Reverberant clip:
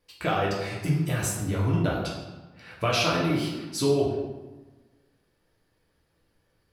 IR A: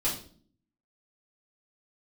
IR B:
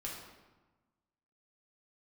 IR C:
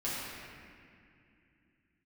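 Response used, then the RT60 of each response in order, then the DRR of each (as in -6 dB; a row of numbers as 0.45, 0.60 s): B; 0.45, 1.2, 2.5 s; -8.5, -4.0, -10.0 dB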